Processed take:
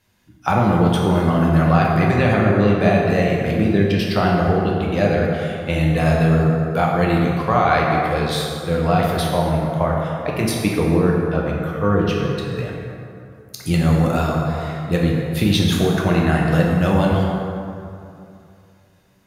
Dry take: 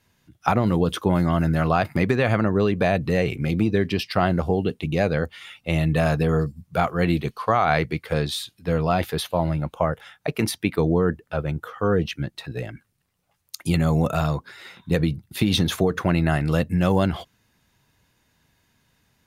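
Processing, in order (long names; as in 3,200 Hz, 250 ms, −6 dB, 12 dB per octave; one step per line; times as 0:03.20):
dense smooth reverb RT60 2.7 s, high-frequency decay 0.5×, DRR −2.5 dB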